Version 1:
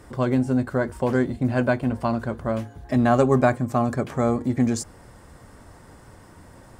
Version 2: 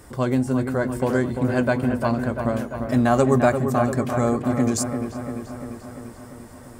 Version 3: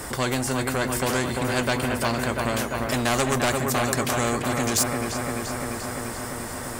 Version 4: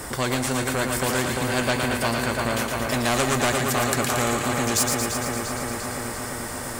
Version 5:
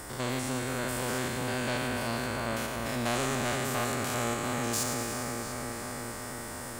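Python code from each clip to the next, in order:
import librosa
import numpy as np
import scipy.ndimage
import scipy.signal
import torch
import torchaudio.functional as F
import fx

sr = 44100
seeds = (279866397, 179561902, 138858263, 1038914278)

y1 = fx.high_shelf(x, sr, hz=7200.0, db=11.5)
y1 = fx.echo_wet_lowpass(y1, sr, ms=345, feedback_pct=65, hz=2600.0, wet_db=-7.0)
y2 = 10.0 ** (-13.5 / 20.0) * np.tanh(y1 / 10.0 ** (-13.5 / 20.0))
y2 = fx.spectral_comp(y2, sr, ratio=2.0)
y2 = y2 * librosa.db_to_amplitude(8.0)
y3 = fx.echo_thinned(y2, sr, ms=114, feedback_pct=69, hz=870.0, wet_db=-4.5)
y4 = fx.spec_steps(y3, sr, hold_ms=100)
y4 = y4 * librosa.db_to_amplitude(-6.5)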